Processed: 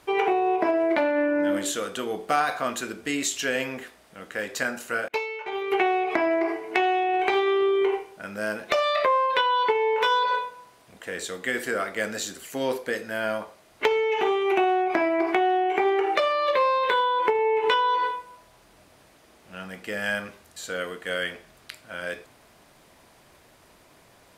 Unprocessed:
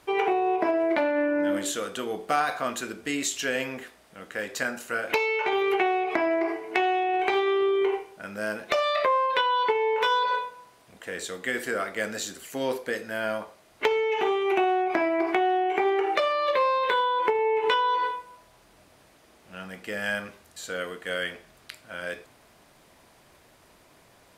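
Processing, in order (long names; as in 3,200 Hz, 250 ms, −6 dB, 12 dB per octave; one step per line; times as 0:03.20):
0:05.08–0:05.72: downward expander −18 dBFS
level +1.5 dB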